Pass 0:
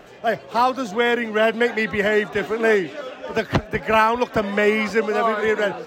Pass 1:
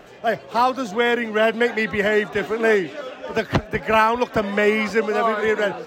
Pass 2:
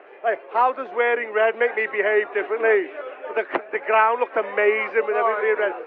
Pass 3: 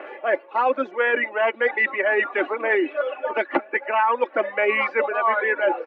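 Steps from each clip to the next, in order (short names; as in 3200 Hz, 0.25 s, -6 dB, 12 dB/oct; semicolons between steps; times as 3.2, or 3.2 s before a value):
nothing audible
Chebyshev band-pass 360–2400 Hz, order 3
reverb removal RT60 1.4 s; comb 3.5 ms, depth 59%; reverse; compressor 6:1, threshold -27 dBFS, peak gain reduction 14 dB; reverse; gain +9 dB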